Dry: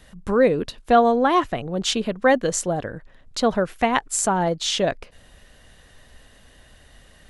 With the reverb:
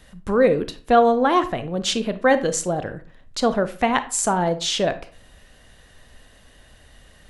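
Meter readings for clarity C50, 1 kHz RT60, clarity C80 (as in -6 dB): 14.0 dB, 0.40 s, 19.5 dB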